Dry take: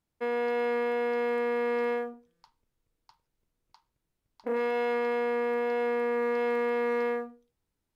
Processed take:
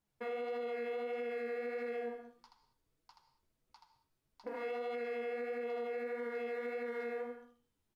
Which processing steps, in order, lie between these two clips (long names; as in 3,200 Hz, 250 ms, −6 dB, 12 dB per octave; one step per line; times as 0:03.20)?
tuned comb filter 100 Hz, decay 1.2 s, harmonics odd, mix 50%
downward compressor, threshold −39 dBFS, peak gain reduction 8 dB
ambience of single reflections 14 ms −4.5 dB, 79 ms −4.5 dB
flanger 1.6 Hz, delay 3.4 ms, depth 7.7 ms, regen +31%
reverb whose tail is shaped and stops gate 220 ms flat, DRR 9 dB
brickwall limiter −38.5 dBFS, peak gain reduction 7 dB
level +6 dB